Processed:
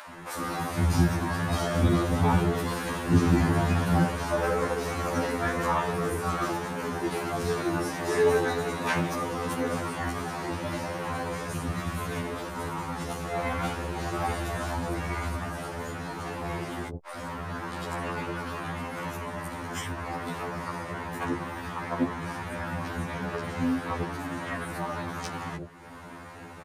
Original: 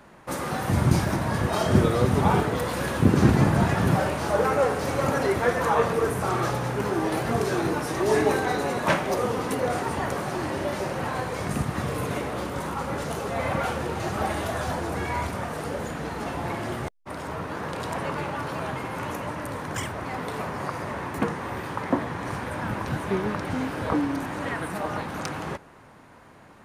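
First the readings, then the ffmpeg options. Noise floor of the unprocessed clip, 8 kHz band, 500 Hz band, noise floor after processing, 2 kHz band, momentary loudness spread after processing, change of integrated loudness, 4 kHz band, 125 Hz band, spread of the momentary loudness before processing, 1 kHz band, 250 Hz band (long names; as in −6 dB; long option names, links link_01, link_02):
−50 dBFS, −2.5 dB, −4.5 dB, −42 dBFS, −2.5 dB, 11 LU, −3.5 dB, −2.5 dB, −3.0 dB, 10 LU, −3.5 dB, −3.0 dB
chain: -filter_complex "[0:a]acrossover=split=550[link_01][link_02];[link_01]adelay=90[link_03];[link_03][link_02]amix=inputs=2:normalize=0,acompressor=mode=upward:threshold=-31dB:ratio=2.5,afftfilt=real='re*2*eq(mod(b,4),0)':imag='im*2*eq(mod(b,4),0)':win_size=2048:overlap=0.75"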